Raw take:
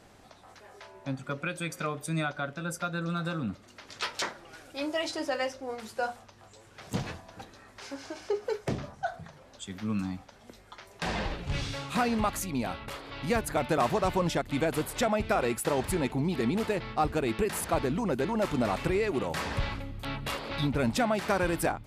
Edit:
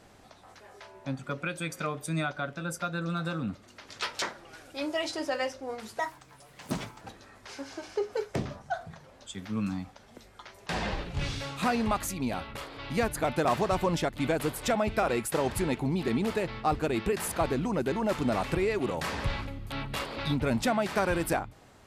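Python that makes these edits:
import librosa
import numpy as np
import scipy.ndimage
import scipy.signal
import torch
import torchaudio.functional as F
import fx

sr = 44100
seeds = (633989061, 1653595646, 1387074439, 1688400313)

y = fx.edit(x, sr, fx.speed_span(start_s=5.99, length_s=1.35, speed=1.32), tone=tone)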